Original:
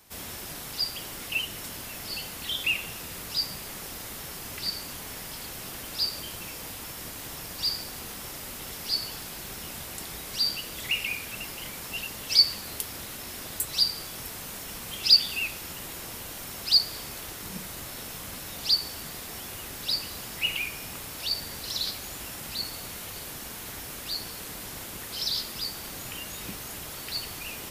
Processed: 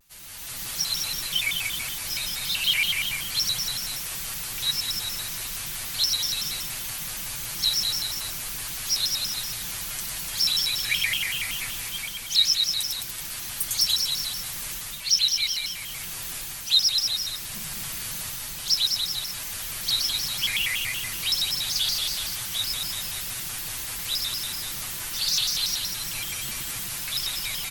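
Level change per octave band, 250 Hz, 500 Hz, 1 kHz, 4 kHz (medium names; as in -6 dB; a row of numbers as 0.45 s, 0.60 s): -3.0 dB, -5.5 dB, 0.0 dB, +4.5 dB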